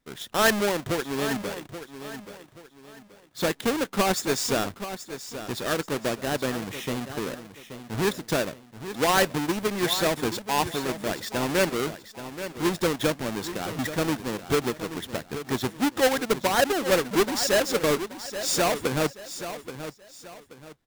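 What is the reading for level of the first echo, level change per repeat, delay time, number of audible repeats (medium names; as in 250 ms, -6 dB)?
-11.5 dB, -9.5 dB, 829 ms, 3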